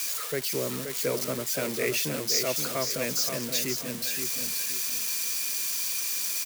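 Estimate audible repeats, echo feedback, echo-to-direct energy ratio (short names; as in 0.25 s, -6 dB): 3, 32%, -6.0 dB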